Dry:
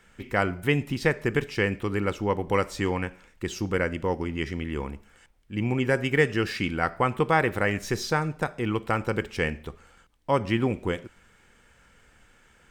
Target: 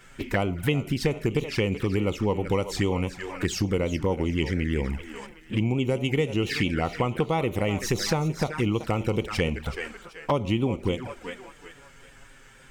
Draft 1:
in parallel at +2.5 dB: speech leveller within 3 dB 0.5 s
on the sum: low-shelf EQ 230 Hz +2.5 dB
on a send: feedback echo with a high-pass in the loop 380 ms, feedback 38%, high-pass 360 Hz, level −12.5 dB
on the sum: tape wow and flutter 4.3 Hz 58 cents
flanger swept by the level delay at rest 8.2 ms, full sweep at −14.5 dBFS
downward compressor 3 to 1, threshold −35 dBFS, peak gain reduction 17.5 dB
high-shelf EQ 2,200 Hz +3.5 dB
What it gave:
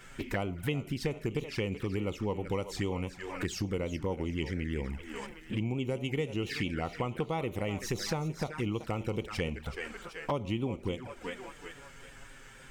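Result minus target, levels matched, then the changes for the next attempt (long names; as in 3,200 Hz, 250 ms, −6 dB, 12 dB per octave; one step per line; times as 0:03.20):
downward compressor: peak gain reduction +8 dB
change: downward compressor 3 to 1, threshold −23 dBFS, peak gain reduction 9.5 dB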